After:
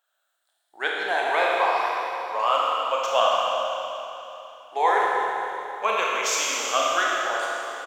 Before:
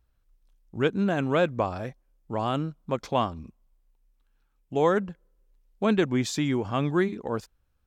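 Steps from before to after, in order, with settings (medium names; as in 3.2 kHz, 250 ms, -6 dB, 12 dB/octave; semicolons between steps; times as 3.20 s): drifting ripple filter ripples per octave 0.84, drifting +0.28 Hz, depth 11 dB; high-pass 640 Hz 24 dB/octave; speakerphone echo 160 ms, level -13 dB; Schroeder reverb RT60 3.2 s, combs from 26 ms, DRR -4 dB; trim +4 dB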